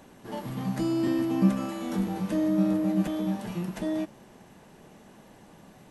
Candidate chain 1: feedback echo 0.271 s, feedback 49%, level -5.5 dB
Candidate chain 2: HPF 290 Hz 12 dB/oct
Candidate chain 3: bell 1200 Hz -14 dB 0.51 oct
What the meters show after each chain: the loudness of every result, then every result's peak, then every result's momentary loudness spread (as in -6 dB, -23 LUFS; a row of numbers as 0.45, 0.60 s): -27.5, -32.0, -28.5 LUFS; -10.5, -16.5, -10.5 dBFS; 16, 11, 10 LU